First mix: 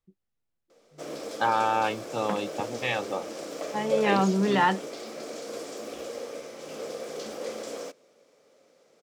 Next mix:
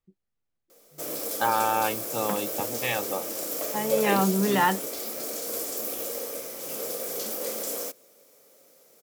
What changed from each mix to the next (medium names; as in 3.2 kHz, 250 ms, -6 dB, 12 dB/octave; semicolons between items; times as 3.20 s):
background: remove distance through air 120 m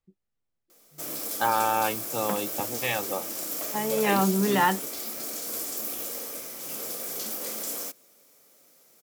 background: add peaking EQ 500 Hz -9 dB 0.77 oct